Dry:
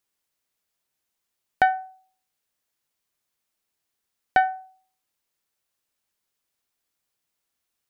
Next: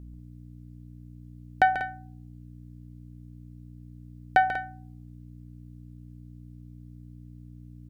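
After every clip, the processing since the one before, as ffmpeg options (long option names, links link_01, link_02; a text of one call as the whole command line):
ffmpeg -i in.wav -af "aeval=exprs='val(0)+0.00891*(sin(2*PI*60*n/s)+sin(2*PI*2*60*n/s)/2+sin(2*PI*3*60*n/s)/3+sin(2*PI*4*60*n/s)/4+sin(2*PI*5*60*n/s)/5)':channel_layout=same,aecho=1:1:139.9|192.4:0.316|0.251,volume=-1.5dB" out.wav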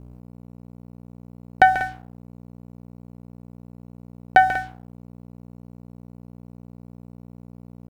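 ffmpeg -i in.wav -af "aeval=exprs='sgn(val(0))*max(abs(val(0))-0.00398,0)':channel_layout=same,volume=7dB" out.wav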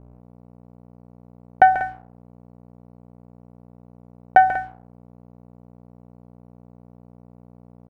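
ffmpeg -i in.wav -af "firequalizer=gain_entry='entry(270,0);entry(630,7);entry(3600,-9)':delay=0.05:min_phase=1,volume=-4.5dB" out.wav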